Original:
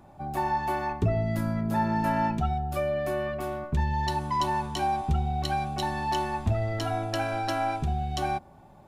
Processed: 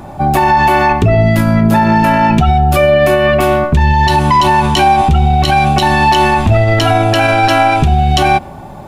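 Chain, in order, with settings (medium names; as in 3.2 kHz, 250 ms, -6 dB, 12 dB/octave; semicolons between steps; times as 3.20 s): dynamic bell 2.7 kHz, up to +7 dB, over -52 dBFS, Q 1.6; loudness maximiser +23.5 dB; trim -1 dB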